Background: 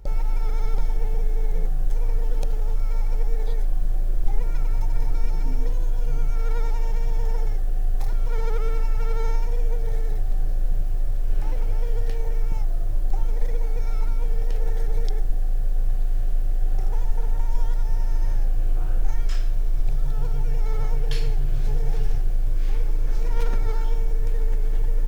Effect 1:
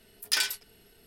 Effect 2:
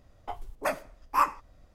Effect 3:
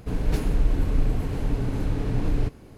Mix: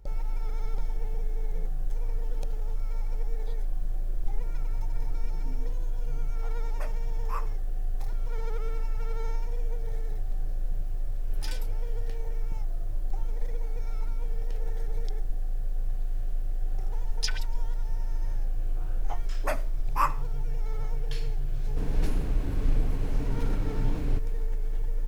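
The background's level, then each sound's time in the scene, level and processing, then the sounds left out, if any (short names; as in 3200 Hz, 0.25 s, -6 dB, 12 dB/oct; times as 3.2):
background -7.5 dB
6.15 add 2 -14 dB
11.11 add 1 -16.5 dB
16.91 add 1 -1 dB + LFO band-pass sine 6.6 Hz 480–6100 Hz
18.82 add 2 -2 dB
21.7 add 3 -6 dB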